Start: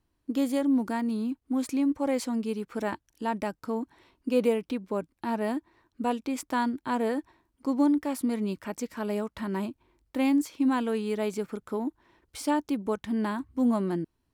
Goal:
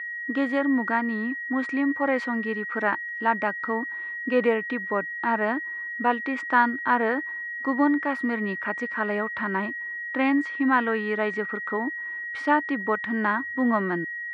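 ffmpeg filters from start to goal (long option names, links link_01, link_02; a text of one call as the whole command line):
ffmpeg -i in.wav -af "equalizer=frequency=1500:width_type=o:width=1.6:gain=14,aeval=exprs='val(0)+0.0316*sin(2*PI*1900*n/s)':channel_layout=same,highpass=130,lowpass=2800" out.wav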